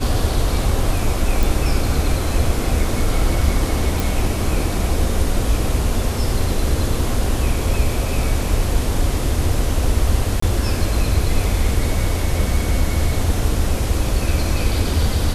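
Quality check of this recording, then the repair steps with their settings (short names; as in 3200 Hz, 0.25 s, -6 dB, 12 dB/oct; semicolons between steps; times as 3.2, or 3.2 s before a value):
1.43 pop
4 pop
10.4–10.42 gap 24 ms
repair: de-click; interpolate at 10.4, 24 ms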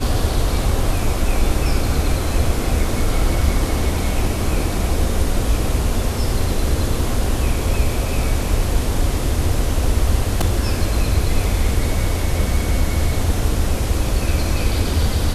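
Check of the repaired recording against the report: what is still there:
none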